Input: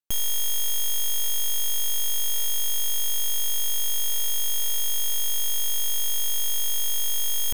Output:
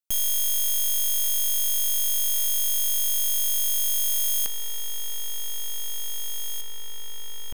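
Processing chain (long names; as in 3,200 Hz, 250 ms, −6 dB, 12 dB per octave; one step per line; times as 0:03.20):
high-shelf EQ 3,800 Hz +8 dB, from 0:04.46 −2 dB, from 0:06.61 −11.5 dB
level −4.5 dB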